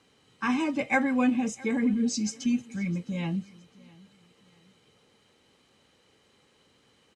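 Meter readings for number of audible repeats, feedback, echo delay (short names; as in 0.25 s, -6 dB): 2, 34%, 0.661 s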